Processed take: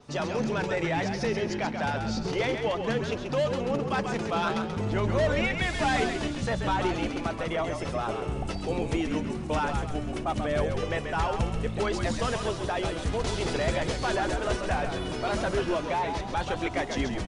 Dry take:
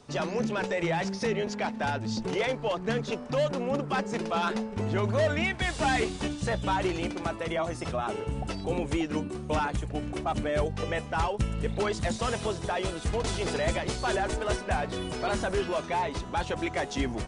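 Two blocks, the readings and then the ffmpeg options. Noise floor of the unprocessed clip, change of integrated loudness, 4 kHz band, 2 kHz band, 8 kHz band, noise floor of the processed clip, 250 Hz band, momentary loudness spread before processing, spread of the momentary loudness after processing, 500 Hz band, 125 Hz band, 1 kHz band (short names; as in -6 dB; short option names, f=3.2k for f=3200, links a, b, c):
-39 dBFS, +1.0 dB, +1.0 dB, +1.0 dB, -1.0 dB, -35 dBFS, +1.0 dB, 4 LU, 4 LU, +1.0 dB, +1.0 dB, +1.0 dB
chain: -filter_complex "[0:a]adynamicequalizer=threshold=0.00112:dfrequency=8500:dqfactor=2:tfrequency=8500:tqfactor=2:attack=5:release=100:ratio=0.375:range=2.5:mode=cutabove:tftype=bell,asplit=6[a][b][c][d][e][f];[b]adelay=134,afreqshift=-54,volume=-6dB[g];[c]adelay=268,afreqshift=-108,volume=-13.5dB[h];[d]adelay=402,afreqshift=-162,volume=-21.1dB[i];[e]adelay=536,afreqshift=-216,volume=-28.6dB[j];[f]adelay=670,afreqshift=-270,volume=-36.1dB[k];[a][g][h][i][j][k]amix=inputs=6:normalize=0"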